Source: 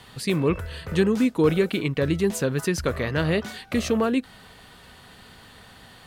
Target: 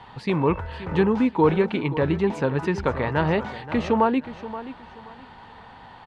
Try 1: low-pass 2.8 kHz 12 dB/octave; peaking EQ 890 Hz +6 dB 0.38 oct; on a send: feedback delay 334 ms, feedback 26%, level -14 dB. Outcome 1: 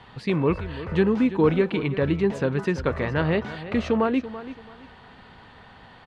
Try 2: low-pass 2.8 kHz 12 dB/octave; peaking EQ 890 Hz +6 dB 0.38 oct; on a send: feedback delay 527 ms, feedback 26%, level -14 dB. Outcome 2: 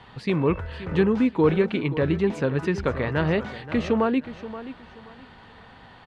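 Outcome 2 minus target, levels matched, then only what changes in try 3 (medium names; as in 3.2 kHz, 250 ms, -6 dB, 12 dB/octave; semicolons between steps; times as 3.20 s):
1 kHz band -5.5 dB
change: peaking EQ 890 Hz +16 dB 0.38 oct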